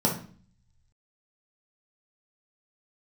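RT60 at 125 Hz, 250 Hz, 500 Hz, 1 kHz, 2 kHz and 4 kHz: 1.3 s, 0.75 s, 0.45 s, 0.45 s, 0.40 s, 0.40 s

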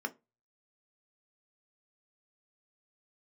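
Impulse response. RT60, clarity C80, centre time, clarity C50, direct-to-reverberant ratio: 0.25 s, 30.0 dB, 4 ms, 21.5 dB, 5.5 dB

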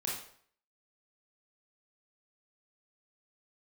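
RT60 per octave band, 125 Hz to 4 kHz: 0.55 s, 0.55 s, 0.60 s, 0.60 s, 0.55 s, 0.50 s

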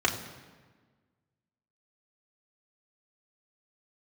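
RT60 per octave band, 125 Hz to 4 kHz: 1.7 s, 1.8 s, 1.5 s, 1.4 s, 1.3 s, 1.1 s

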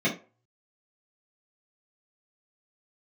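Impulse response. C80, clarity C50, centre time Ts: 17.5 dB, 10.5 dB, 18 ms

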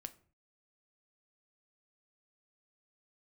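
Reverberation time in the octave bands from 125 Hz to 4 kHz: 0.65 s, 0.50 s, 0.45 s, 0.45 s, 0.35 s, 0.30 s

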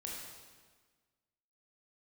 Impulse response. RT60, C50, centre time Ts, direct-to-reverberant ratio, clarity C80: 1.5 s, 0.5 dB, 82 ms, -3.0 dB, 2.5 dB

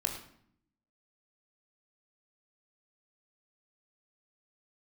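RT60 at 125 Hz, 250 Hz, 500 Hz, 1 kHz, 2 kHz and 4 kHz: 1.0 s, 1.0 s, 0.65 s, 0.60 s, 0.55 s, 0.50 s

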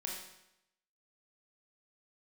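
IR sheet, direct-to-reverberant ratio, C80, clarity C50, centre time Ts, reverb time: -2.0 dB, 5.5 dB, 2.0 dB, 50 ms, 0.85 s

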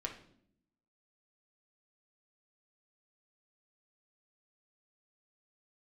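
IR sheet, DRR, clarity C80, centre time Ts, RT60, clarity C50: 1.0 dB, 13.0 dB, 17 ms, 0.65 s, 8.5 dB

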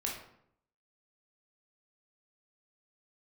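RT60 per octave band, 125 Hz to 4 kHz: 0.85 s, 0.80 s, 0.75 s, 0.65 s, 0.60 s, 0.45 s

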